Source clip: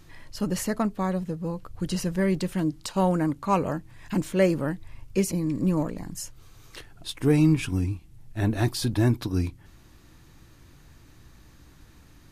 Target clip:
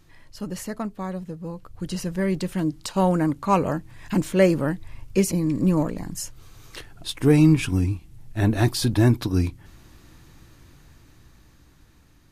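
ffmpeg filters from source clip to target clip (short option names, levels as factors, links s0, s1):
-af "dynaudnorm=f=530:g=9:m=3.98,volume=0.596"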